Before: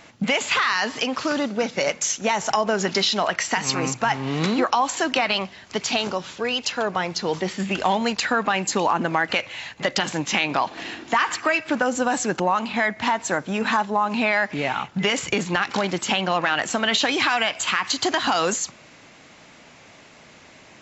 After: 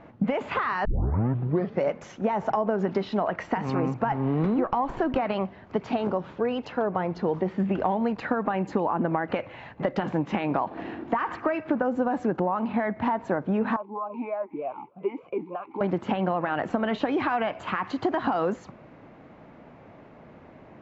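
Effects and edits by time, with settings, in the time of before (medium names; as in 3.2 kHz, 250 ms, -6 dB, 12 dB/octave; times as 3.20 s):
0.85 s: tape start 0.97 s
4.12–5.19 s: sliding maximum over 3 samples
13.76–15.81 s: talking filter a-u 3.3 Hz
whole clip: Bessel low-pass 740 Hz, order 2; compression, threshold -25 dBFS; trim +4 dB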